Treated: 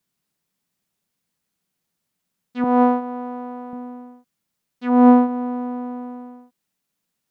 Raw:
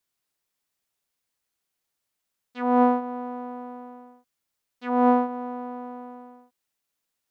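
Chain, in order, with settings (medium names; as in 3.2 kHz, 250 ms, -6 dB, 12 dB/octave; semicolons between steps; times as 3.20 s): peaking EQ 180 Hz +15 dB 1.2 oct, from 2.64 s +2.5 dB, from 3.73 s +12.5 dB; trim +2.5 dB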